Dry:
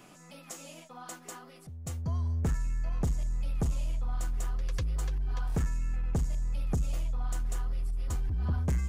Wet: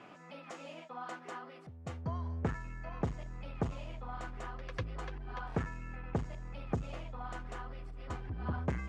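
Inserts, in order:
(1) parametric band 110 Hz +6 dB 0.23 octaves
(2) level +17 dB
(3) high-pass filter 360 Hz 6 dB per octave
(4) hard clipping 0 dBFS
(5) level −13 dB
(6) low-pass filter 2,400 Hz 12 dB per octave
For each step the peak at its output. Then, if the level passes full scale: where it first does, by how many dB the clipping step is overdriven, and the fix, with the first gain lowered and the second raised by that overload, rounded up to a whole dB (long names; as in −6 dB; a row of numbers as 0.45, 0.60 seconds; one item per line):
−20.5, −3.5, −5.0, −5.0, −18.0, −18.5 dBFS
no step passes full scale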